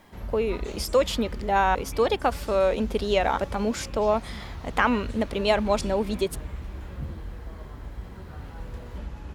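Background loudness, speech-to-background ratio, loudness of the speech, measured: −38.5 LKFS, 13.0 dB, −25.5 LKFS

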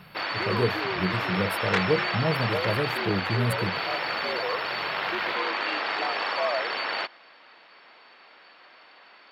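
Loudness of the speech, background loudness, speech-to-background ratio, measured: −29.5 LKFS, −27.5 LKFS, −2.0 dB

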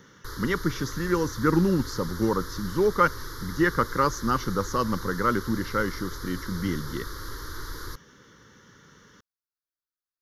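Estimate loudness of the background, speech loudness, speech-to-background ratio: −38.5 LKFS, −26.5 LKFS, 12.0 dB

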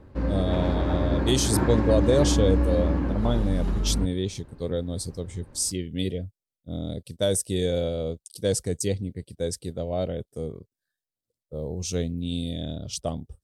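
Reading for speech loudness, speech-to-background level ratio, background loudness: −28.0 LKFS, −2.0 dB, −26.0 LKFS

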